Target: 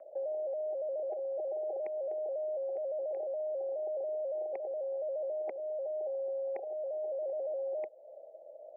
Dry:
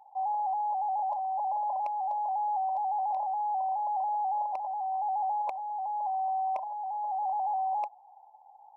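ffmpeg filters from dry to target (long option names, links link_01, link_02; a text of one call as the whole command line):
ffmpeg -i in.wav -filter_complex "[0:a]highpass=frequency=510:width_type=q:width=0.5412,highpass=frequency=510:width_type=q:width=1.307,lowpass=frequency=2400:width_type=q:width=0.5176,lowpass=frequency=2400:width_type=q:width=0.7071,lowpass=frequency=2400:width_type=q:width=1.932,afreqshift=-220,acrossover=split=450|1200[link_01][link_02][link_03];[link_01]acompressor=threshold=-52dB:ratio=4[link_04];[link_02]acompressor=threshold=-45dB:ratio=4[link_05];[link_03]acompressor=threshold=-57dB:ratio=4[link_06];[link_04][link_05][link_06]amix=inputs=3:normalize=0,volume=4.5dB" out.wav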